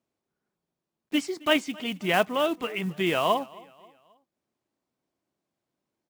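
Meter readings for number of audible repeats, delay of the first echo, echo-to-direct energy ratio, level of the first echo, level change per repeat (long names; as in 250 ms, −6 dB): 2, 267 ms, −22.0 dB, −23.0 dB, −7.0 dB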